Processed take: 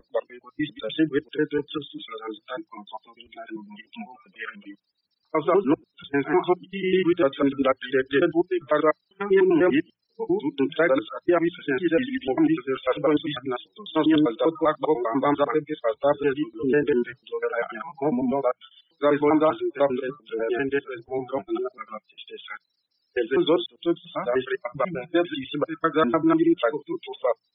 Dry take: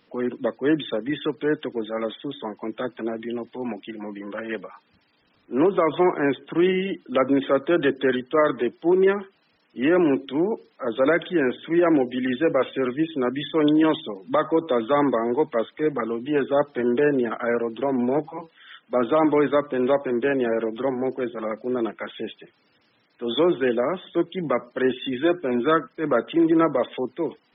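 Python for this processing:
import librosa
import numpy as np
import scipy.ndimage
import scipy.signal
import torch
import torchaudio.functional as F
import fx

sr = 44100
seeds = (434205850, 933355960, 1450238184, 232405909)

y = fx.block_reorder(x, sr, ms=99.0, group=6)
y = fx.hum_notches(y, sr, base_hz=60, count=3)
y = fx.noise_reduce_blind(y, sr, reduce_db=26)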